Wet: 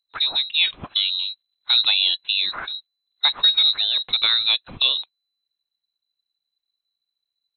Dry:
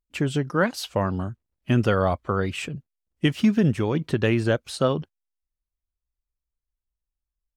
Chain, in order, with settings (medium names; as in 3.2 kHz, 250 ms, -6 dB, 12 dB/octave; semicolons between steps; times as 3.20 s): frequency inversion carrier 4 kHz; trim +1.5 dB